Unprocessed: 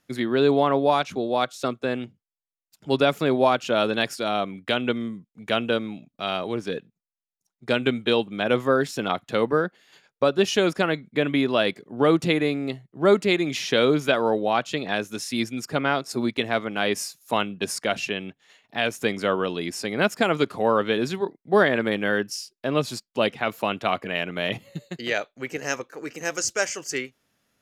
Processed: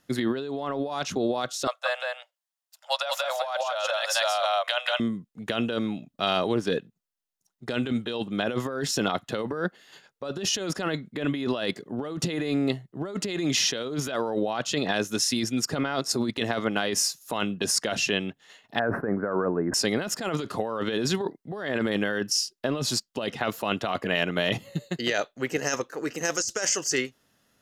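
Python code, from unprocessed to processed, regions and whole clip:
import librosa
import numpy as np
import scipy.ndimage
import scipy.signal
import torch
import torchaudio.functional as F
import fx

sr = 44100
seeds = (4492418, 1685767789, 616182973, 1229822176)

y = fx.chain(x, sr, fx.steep_highpass(hz=550.0, slope=96),
    fx.echo_single(ms=183, db=-3.5), at=(1.67, 5.0))
y = fx.chain(y, sr, fx.ellip_lowpass(hz=1600.0, order=4, stop_db=50),
    fx.sustainer(db_per_s=110.0), at=(18.79, 19.74))
y = fx.notch(y, sr, hz=2300.0, q=8.6)
y = fx.dynamic_eq(y, sr, hz=5900.0, q=1.4, threshold_db=-45.0, ratio=4.0, max_db=6)
y = fx.over_compress(y, sr, threshold_db=-27.0, ratio=-1.0)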